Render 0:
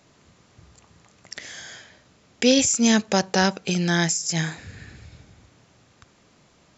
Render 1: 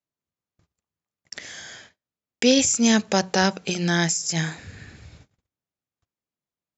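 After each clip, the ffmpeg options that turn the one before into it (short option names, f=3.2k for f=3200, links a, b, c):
-af "bandreject=f=60:t=h:w=6,bandreject=f=120:t=h:w=6,bandreject=f=180:t=h:w=6,agate=range=-37dB:threshold=-47dB:ratio=16:detection=peak"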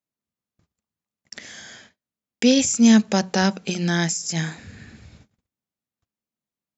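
-af "equalizer=f=220:t=o:w=0.47:g=8,volume=-1.5dB"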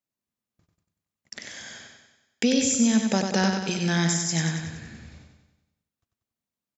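-af "acompressor=threshold=-17dB:ratio=6,aecho=1:1:94|188|282|376|470|564|658:0.562|0.304|0.164|0.0885|0.0478|0.0258|0.0139,volume=-1.5dB"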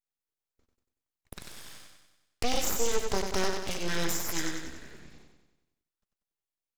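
-af "aeval=exprs='abs(val(0))':c=same,volume=-3.5dB"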